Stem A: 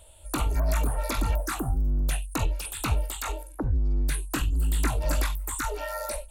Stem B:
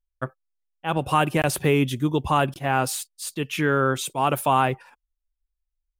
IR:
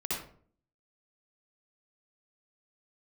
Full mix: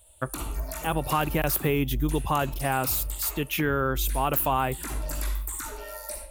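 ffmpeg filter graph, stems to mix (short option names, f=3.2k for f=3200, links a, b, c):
-filter_complex "[0:a]crystalizer=i=1.5:c=0,volume=-11.5dB,asplit=2[a][b];[b]volume=-5dB[c];[1:a]aexciter=amount=8:drive=4.3:freq=12k,volume=0.5dB[d];[2:a]atrim=start_sample=2205[e];[c][e]afir=irnorm=-1:irlink=0[f];[a][d][f]amix=inputs=3:normalize=0,acompressor=threshold=-25dB:ratio=2"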